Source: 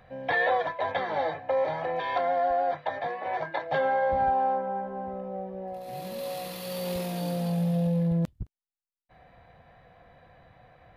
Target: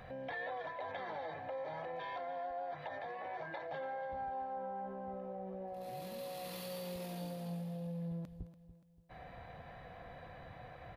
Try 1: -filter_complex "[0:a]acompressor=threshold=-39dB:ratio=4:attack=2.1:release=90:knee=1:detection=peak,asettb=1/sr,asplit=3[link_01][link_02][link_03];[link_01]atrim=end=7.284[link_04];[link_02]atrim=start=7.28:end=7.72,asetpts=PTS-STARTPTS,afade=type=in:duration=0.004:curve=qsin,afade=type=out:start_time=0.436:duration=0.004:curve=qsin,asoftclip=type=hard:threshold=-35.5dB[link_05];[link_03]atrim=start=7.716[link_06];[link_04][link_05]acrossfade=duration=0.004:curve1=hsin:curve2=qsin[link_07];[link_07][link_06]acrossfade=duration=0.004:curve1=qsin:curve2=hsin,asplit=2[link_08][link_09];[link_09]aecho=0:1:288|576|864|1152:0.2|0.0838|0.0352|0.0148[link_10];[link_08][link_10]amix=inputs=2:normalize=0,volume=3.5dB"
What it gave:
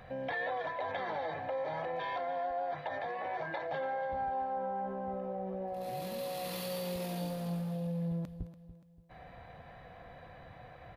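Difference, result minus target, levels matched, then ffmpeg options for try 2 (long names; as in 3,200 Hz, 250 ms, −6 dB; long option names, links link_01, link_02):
downward compressor: peak gain reduction −6 dB
-filter_complex "[0:a]acompressor=threshold=-47dB:ratio=4:attack=2.1:release=90:knee=1:detection=peak,asettb=1/sr,asplit=3[link_01][link_02][link_03];[link_01]atrim=end=7.284[link_04];[link_02]atrim=start=7.28:end=7.72,asetpts=PTS-STARTPTS,afade=type=in:duration=0.004:curve=qsin,afade=type=out:start_time=0.436:duration=0.004:curve=qsin,asoftclip=type=hard:threshold=-35.5dB[link_05];[link_03]atrim=start=7.716[link_06];[link_04][link_05]acrossfade=duration=0.004:curve1=hsin:curve2=qsin[link_07];[link_07][link_06]acrossfade=duration=0.004:curve1=qsin:curve2=hsin,asplit=2[link_08][link_09];[link_09]aecho=0:1:288|576|864|1152:0.2|0.0838|0.0352|0.0148[link_10];[link_08][link_10]amix=inputs=2:normalize=0,volume=3.5dB"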